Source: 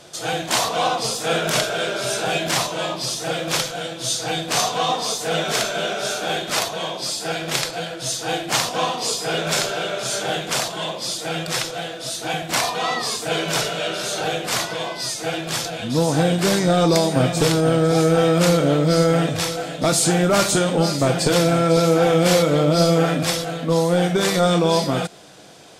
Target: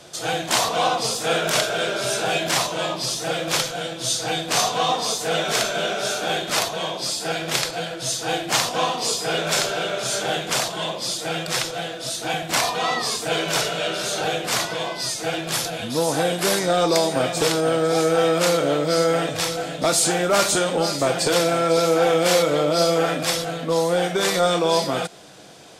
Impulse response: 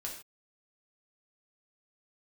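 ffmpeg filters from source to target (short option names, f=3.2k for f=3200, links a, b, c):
-filter_complex "[0:a]asettb=1/sr,asplit=3[a][b][c];[a]atrim=end=15.524[d];[b]atrim=start=15.52:end=16.66,asetpts=PTS-STARTPTS,afade=t=in:d=0.004:c=qsin,afade=t=out:st=1.136:d=0.004:c=qsin,equalizer=f=11k:t=o:w=0.3:g=8.5[e];[c]atrim=start=16.656[f];[d][e]acrossfade=d=0.004:c1=hsin:c2=qsin[g];[g][f]acrossfade=d=0.004:c1=qsin:c2=hsin,acrossover=split=330|1400[h][i][j];[h]acompressor=threshold=-32dB:ratio=6[k];[k][i][j]amix=inputs=3:normalize=0"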